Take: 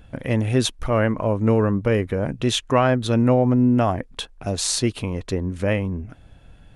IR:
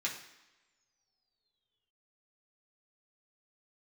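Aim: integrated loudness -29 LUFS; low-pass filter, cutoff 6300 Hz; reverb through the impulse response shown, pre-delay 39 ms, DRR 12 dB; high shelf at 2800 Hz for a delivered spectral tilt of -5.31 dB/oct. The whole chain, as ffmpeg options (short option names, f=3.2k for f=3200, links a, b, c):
-filter_complex "[0:a]lowpass=6.3k,highshelf=f=2.8k:g=5,asplit=2[a][b];[1:a]atrim=start_sample=2205,adelay=39[c];[b][c]afir=irnorm=-1:irlink=0,volume=-15.5dB[d];[a][d]amix=inputs=2:normalize=0,volume=-8dB"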